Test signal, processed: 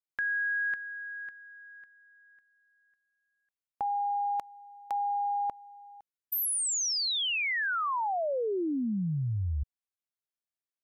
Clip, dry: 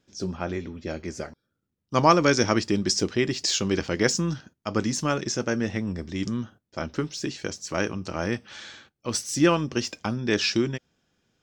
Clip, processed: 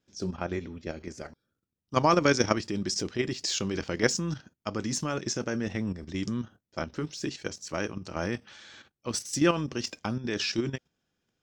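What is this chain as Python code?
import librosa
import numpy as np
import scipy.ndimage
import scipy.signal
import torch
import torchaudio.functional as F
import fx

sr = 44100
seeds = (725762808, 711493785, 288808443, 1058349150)

y = fx.level_steps(x, sr, step_db=10)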